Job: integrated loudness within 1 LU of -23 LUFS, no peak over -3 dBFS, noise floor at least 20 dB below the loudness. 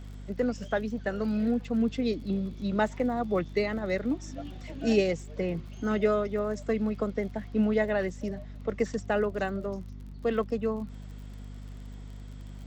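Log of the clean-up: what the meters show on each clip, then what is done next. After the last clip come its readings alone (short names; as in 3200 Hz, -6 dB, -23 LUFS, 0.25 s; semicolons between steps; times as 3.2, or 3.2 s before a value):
ticks 42/s; hum 50 Hz; harmonics up to 250 Hz; hum level -40 dBFS; loudness -30.0 LUFS; peak -12.5 dBFS; loudness target -23.0 LUFS
-> de-click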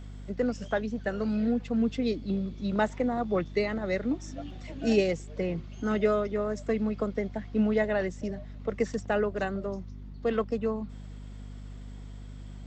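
ticks 0.16/s; hum 50 Hz; harmonics up to 250 Hz; hum level -40 dBFS
-> notches 50/100/150/200/250 Hz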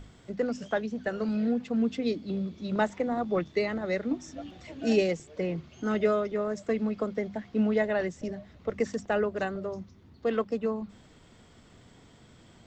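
hum none; loudness -30.5 LUFS; peak -12.5 dBFS; loudness target -23.0 LUFS
-> gain +7.5 dB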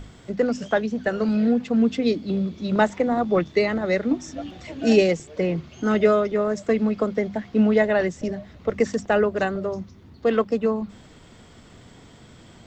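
loudness -23.0 LUFS; peak -5.0 dBFS; noise floor -49 dBFS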